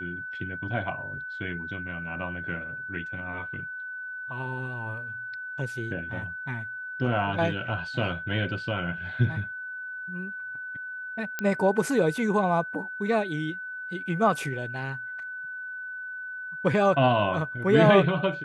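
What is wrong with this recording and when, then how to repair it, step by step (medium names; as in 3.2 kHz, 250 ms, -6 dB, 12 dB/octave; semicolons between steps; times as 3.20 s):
whine 1.5 kHz -34 dBFS
11.39 s: pop -14 dBFS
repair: de-click; band-stop 1.5 kHz, Q 30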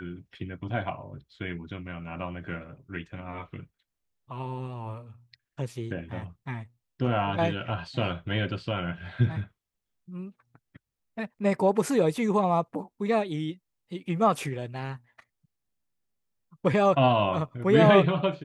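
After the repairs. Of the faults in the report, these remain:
nothing left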